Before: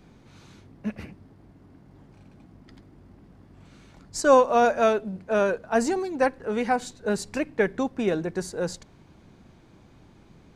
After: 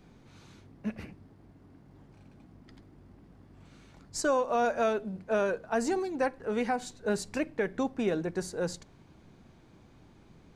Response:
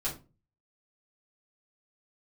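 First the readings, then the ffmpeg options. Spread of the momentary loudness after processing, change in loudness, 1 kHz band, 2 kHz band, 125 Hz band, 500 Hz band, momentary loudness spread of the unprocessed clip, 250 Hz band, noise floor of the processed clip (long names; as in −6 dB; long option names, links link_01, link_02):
12 LU, −6.5 dB, −7.5 dB, −6.0 dB, −4.5 dB, −7.0 dB, 16 LU, −5.0 dB, −58 dBFS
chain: -filter_complex "[0:a]alimiter=limit=-15dB:level=0:latency=1:release=167,asplit=2[link_01][link_02];[1:a]atrim=start_sample=2205[link_03];[link_02][link_03]afir=irnorm=-1:irlink=0,volume=-22.5dB[link_04];[link_01][link_04]amix=inputs=2:normalize=0,volume=-4dB"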